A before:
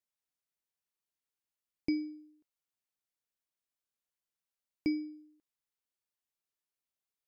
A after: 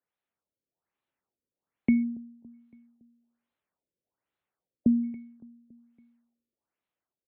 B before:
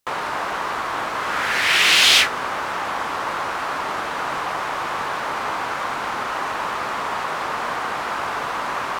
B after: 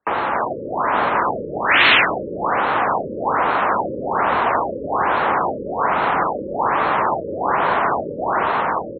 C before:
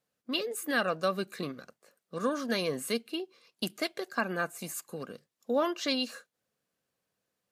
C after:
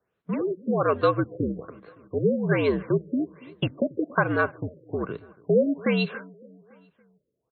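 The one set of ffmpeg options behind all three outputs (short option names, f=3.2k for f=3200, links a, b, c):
-filter_complex "[0:a]afreqshift=-68,highpass=43,equalizer=f=6.9k:t=o:w=1.9:g=-14,dynaudnorm=f=150:g=9:m=3.5dB,lowshelf=f=88:g=-9,asplit=2[a][b];[b]acompressor=threshold=-30dB:ratio=6,volume=-0.5dB[c];[a][c]amix=inputs=2:normalize=0,asplit=2[d][e];[e]adelay=281,lowpass=f=4.5k:p=1,volume=-22dB,asplit=2[f][g];[g]adelay=281,lowpass=f=4.5k:p=1,volume=0.54,asplit=2[h][i];[i]adelay=281,lowpass=f=4.5k:p=1,volume=0.54,asplit=2[j][k];[k]adelay=281,lowpass=f=4.5k:p=1,volume=0.54[l];[d][f][h][j][l]amix=inputs=5:normalize=0,afftfilt=real='re*lt(b*sr/1024,560*pow(4400/560,0.5+0.5*sin(2*PI*1.2*pts/sr)))':imag='im*lt(b*sr/1024,560*pow(4400/560,0.5+0.5*sin(2*PI*1.2*pts/sr)))':win_size=1024:overlap=0.75,volume=3dB"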